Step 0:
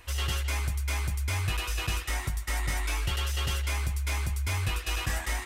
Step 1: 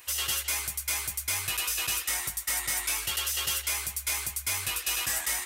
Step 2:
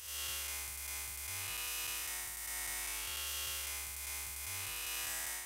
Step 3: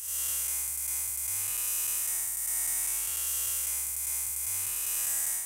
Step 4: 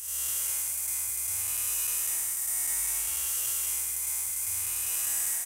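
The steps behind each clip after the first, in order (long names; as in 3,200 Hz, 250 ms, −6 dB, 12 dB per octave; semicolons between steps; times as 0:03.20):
RIAA equalisation recording; level −2 dB
spectrum smeared in time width 219 ms; level −7.5 dB
high shelf with overshoot 5,800 Hz +10.5 dB, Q 1.5
single-tap delay 209 ms −5.5 dB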